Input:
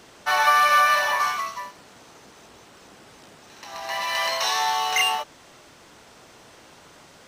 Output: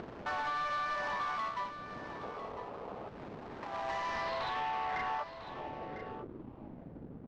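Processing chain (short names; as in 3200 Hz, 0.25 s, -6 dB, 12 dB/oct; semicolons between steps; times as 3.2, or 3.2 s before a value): median filter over 15 samples; spectral gain 2.24–3.08, 400–1300 Hz +9 dB; upward compressor, threshold -36 dBFS; low-pass sweep 12000 Hz -> 260 Hz, 3.56–6.55; backlash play -42.5 dBFS; compressor 6:1, threshold -30 dBFS, peak gain reduction 14 dB; hard clip -31 dBFS, distortion -12 dB; air absorption 190 m; echo 1 s -11.5 dB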